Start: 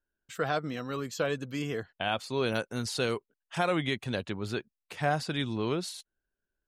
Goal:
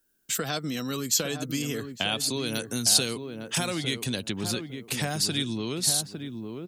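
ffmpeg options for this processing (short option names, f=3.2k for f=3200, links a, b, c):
-filter_complex "[0:a]equalizer=f=240:w=0.66:g=12.5,acompressor=threshold=-25dB:ratio=6,asplit=2[a][b];[b]adelay=856,lowpass=f=1k:p=1,volume=-7dB,asplit=2[c][d];[d]adelay=856,lowpass=f=1k:p=1,volume=0.24,asplit=2[e][f];[f]adelay=856,lowpass=f=1k:p=1,volume=0.24[g];[c][e][g]amix=inputs=3:normalize=0[h];[a][h]amix=inputs=2:normalize=0,crystalizer=i=8.5:c=0,acrossover=split=130|3000[i][j][k];[j]acompressor=threshold=-42dB:ratio=1.5[l];[i][l][k]amix=inputs=3:normalize=0,volume=1.5dB"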